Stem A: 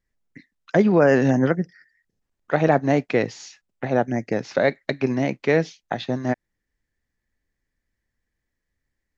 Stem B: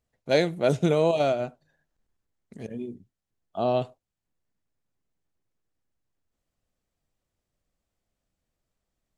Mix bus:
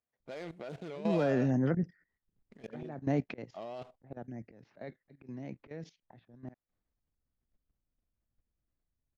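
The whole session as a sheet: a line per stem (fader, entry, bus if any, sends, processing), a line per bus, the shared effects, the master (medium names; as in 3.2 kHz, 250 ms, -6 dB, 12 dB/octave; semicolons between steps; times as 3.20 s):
-4.5 dB, 0.20 s, no send, level-controlled noise filter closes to 480 Hz, open at -16.5 dBFS; slow attack 709 ms
+1.5 dB, 0.00 s, no send, median filter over 15 samples; peak limiter -19.5 dBFS, peak gain reduction 9 dB; band-pass filter 2.4 kHz, Q 0.62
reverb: none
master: bass shelf 400 Hz +10 dB; level held to a coarse grid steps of 14 dB; warped record 45 rpm, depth 100 cents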